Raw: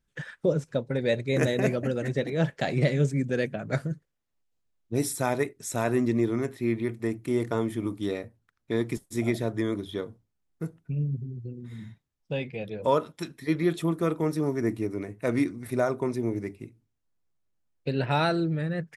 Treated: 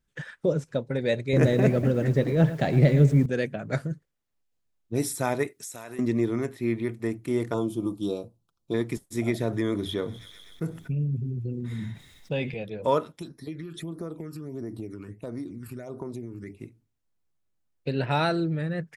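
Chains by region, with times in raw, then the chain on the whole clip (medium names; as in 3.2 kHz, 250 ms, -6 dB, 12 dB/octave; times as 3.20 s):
1.33–3.26 s: companding laws mixed up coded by mu + tilt EQ -2 dB/octave + bit-crushed delay 112 ms, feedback 35%, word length 7-bit, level -14 dB
5.47–5.99 s: tilt EQ +2.5 dB/octave + compression 10:1, threshold -35 dBFS
7.54–8.74 s: Butterworth band-stop 1.9 kHz, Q 0.96 + comb 5.9 ms, depth 40%
9.40–12.54 s: feedback echo behind a high-pass 126 ms, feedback 70%, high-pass 3.1 kHz, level -20 dB + level flattener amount 50%
13.19–16.57 s: compression 10:1, threshold -31 dBFS + phase shifter stages 12, 1.5 Hz, lowest notch 630–2900 Hz
whole clip: none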